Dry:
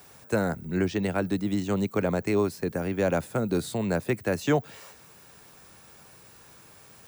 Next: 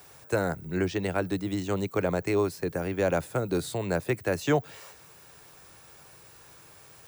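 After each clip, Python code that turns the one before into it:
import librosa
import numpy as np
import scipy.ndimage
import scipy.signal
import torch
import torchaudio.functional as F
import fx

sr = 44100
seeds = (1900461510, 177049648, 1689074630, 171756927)

y = fx.peak_eq(x, sr, hz=220.0, db=-13.0, octaves=0.29)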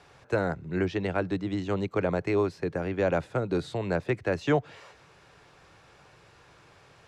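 y = scipy.signal.sosfilt(scipy.signal.butter(2, 3900.0, 'lowpass', fs=sr, output='sos'), x)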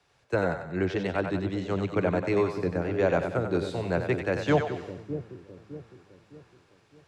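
y = fx.echo_split(x, sr, split_hz=460.0, low_ms=609, high_ms=94, feedback_pct=52, wet_db=-6)
y = fx.band_widen(y, sr, depth_pct=40)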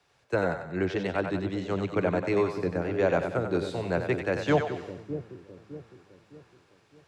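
y = fx.low_shelf(x, sr, hz=120.0, db=-4.0)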